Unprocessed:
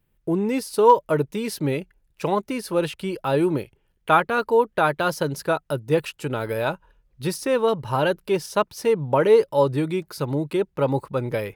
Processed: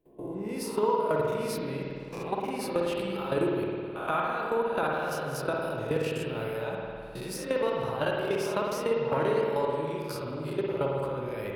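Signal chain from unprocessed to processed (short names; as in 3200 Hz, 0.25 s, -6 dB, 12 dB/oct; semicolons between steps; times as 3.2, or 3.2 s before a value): spectral swells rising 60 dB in 0.39 s; level quantiser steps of 19 dB; limiter -15 dBFS, peak gain reduction 7 dB; compressor 4:1, threshold -27 dBFS, peak gain reduction 7.5 dB; spring tank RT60 2.2 s, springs 52 ms, chirp 30 ms, DRR -2 dB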